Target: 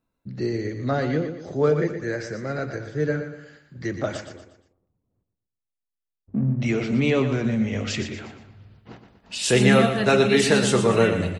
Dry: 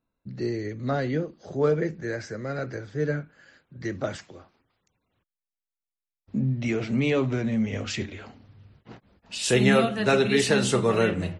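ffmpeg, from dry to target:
-filter_complex "[0:a]asettb=1/sr,asplit=3[a][b][c];[a]atrim=end=4.254[d];[b]atrim=start=4.25:end=6.6,asetpts=PTS-STARTPTS,afade=t=in:d=0.004:c=qsin,afade=t=out:st=2.346:d=0.004:c=qsin,adynamicsmooth=sensitivity=2.5:basefreq=510[e];[c]atrim=start=6.596[f];[d][e]acrossfade=d=0.004:c1=hsin:c2=qsin[g];[g][f]acrossfade=d=0.004:c1=qsin:c2=hsin,asplit=2[h][i];[i]aecho=0:1:119|238|357|476:0.355|0.138|0.054|0.021[j];[h][j]amix=inputs=2:normalize=0,volume=2.5dB"

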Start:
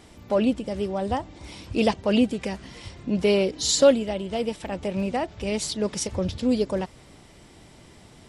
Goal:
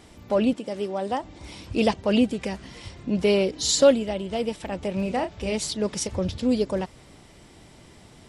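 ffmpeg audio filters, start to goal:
-filter_complex "[0:a]asettb=1/sr,asplit=3[a][b][c];[a]atrim=end=0.534[d];[b]atrim=start=0.53:end=1.24,asetpts=PTS-STARTPTS,afade=t=in:d=0.004:c=qsin,afade=t=out:st=0.706:d=0.004:c=qsin,highpass=230[e];[c]atrim=start=1.236[f];[d][e]acrossfade=d=0.004:c1=hsin:c2=qsin[g];[g][f]acrossfade=d=0.004:c1=qsin:c2=hsin,asettb=1/sr,asplit=3[h][i][j];[h]atrim=end=5.024[k];[i]atrim=start=5.02:end=5.55,asetpts=PTS-STARTPTS,afade=t=in:d=0.004:c=qsin,afade=t=out:st=0.526:d=0.004:c=qsin,asplit=2[l][m];[m]adelay=32,volume=-8.5dB[n];[l][n]amix=inputs=2:normalize=0,atrim=end_sample=23373[o];[j]atrim=start=5.546[p];[k][o]acrossfade=d=0.004:c1=hsin:c2=qsin[q];[q][p]acrossfade=d=0.004:c1=qsin:c2=hsin"

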